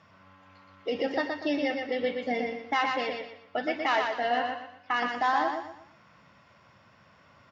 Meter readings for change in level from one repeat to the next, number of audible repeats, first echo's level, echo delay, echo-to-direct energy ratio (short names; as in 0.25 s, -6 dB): -9.5 dB, 4, -4.5 dB, 0.12 s, -4.0 dB